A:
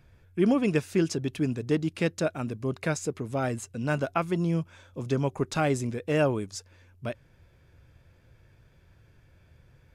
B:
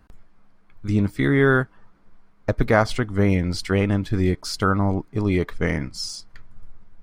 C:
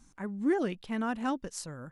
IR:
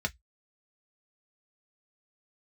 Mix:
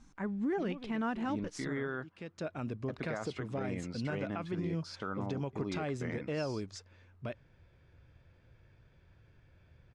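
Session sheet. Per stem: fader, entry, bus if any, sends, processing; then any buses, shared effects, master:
-4.0 dB, 0.20 s, no send, compression 4:1, threshold -27 dBFS, peak gain reduction 8 dB; auto duck -22 dB, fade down 1.60 s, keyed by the third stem
-14.5 dB, 0.40 s, no send, high-pass 160 Hz 12 dB/octave
+1.0 dB, 0.00 s, no send, peak limiter -24.5 dBFS, peak gain reduction 6 dB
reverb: none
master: low-pass 4.8 kHz 12 dB/octave; peak limiter -27 dBFS, peak gain reduction 10 dB

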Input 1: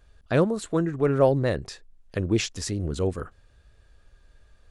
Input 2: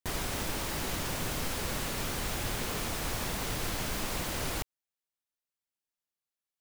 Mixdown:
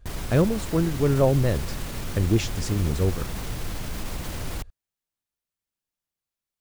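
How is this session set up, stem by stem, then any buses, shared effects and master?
-3.0 dB, 0.00 s, no send, none
+1.5 dB, 0.00 s, no send, peak limiter -29 dBFS, peak gain reduction 8 dB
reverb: none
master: bass shelf 200 Hz +11 dB

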